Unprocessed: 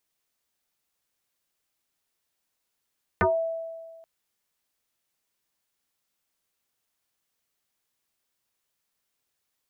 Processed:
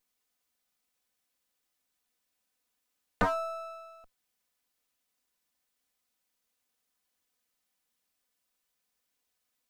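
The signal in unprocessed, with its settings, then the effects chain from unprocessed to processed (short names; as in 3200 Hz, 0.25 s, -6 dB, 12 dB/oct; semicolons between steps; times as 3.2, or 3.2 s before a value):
FM tone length 0.83 s, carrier 657 Hz, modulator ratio 0.43, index 5.2, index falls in 0.21 s exponential, decay 1.63 s, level -17 dB
minimum comb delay 4 ms; dynamic EQ 2700 Hz, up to -6 dB, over -45 dBFS, Q 0.85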